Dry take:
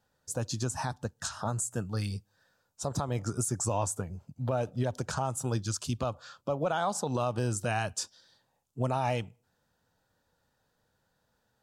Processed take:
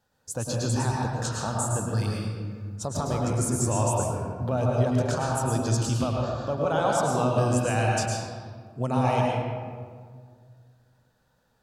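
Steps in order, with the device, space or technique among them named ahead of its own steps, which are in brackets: stairwell (reverberation RT60 1.9 s, pre-delay 100 ms, DRR -2.5 dB); trim +1.5 dB

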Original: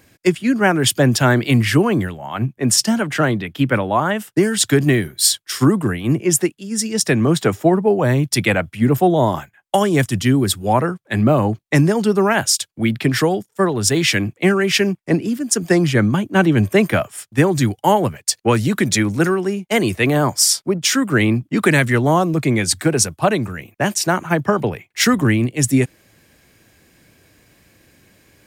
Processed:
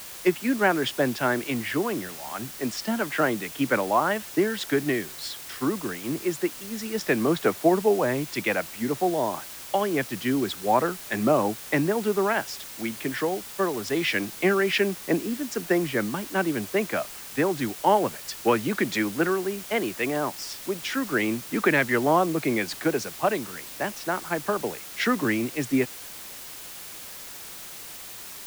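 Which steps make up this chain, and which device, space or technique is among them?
shortwave radio (band-pass 270–2900 Hz; tremolo 0.27 Hz, depth 43%; white noise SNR 14 dB); trim -4 dB

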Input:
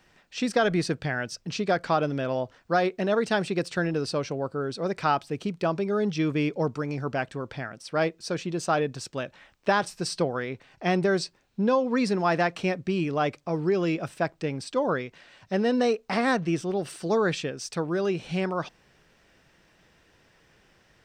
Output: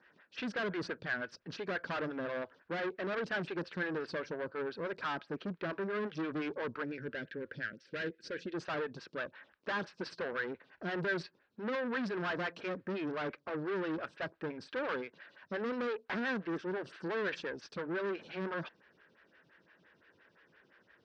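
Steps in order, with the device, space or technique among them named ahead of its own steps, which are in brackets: vibe pedal into a guitar amplifier (lamp-driven phase shifter 5.8 Hz; valve stage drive 33 dB, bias 0.55; cabinet simulation 100–4500 Hz, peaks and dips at 130 Hz -4 dB, 750 Hz -7 dB, 1.6 kHz +9 dB); 6.84–8.54 s: high-order bell 910 Hz -14.5 dB 1.1 oct

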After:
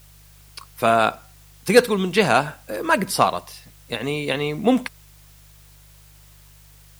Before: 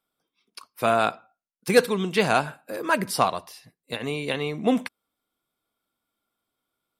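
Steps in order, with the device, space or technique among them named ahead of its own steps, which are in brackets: video cassette with head-switching buzz (mains buzz 50 Hz, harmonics 3, -55 dBFS -4 dB/octave; white noise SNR 30 dB); trim +4 dB

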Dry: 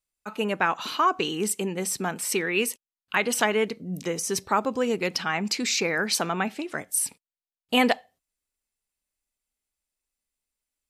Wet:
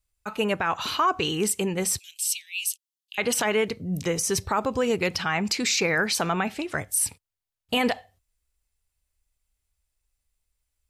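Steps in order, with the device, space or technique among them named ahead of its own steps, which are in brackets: car stereo with a boomy subwoofer (resonant low shelf 140 Hz +13.5 dB, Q 1.5; peak limiter -17.5 dBFS, peak gain reduction 9.5 dB); 1.99–3.18 s: steep high-pass 2.8 kHz 48 dB/octave; trim +3.5 dB

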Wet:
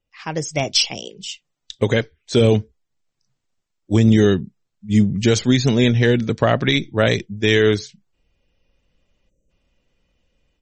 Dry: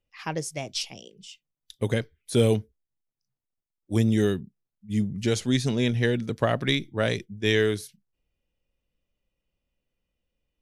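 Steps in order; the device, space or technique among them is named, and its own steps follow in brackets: 0.64–2.41 s: tone controls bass -4 dB, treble 0 dB; 9.29–9.50 s: time-frequency box 630–5700 Hz -23 dB; low-bitrate web radio (level rider gain up to 13 dB; peak limiter -5.5 dBFS, peak gain reduction 4 dB; trim +2 dB; MP3 32 kbps 44.1 kHz)

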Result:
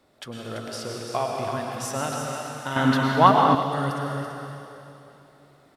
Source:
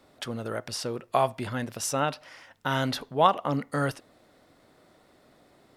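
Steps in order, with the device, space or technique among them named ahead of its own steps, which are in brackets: cave (delay 336 ms -8.5 dB; reverberation RT60 3.0 s, pre-delay 97 ms, DRR -1 dB); 2.76–3.55 s: ten-band graphic EQ 125 Hz +5 dB, 250 Hz +11 dB, 1 kHz +8 dB, 2 kHz +7 dB; trim -3.5 dB

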